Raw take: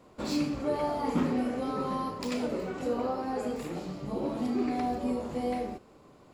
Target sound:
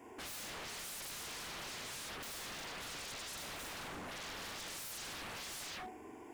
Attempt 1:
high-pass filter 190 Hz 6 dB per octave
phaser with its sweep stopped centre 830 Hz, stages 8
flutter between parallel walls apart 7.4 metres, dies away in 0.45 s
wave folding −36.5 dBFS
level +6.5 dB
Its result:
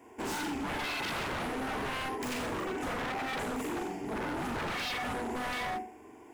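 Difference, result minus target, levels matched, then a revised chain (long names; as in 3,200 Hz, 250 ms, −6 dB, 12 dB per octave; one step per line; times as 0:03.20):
wave folding: distortion −30 dB
high-pass filter 190 Hz 6 dB per octave
phaser with its sweep stopped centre 830 Hz, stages 8
flutter between parallel walls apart 7.4 metres, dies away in 0.45 s
wave folding −47.5 dBFS
level +6.5 dB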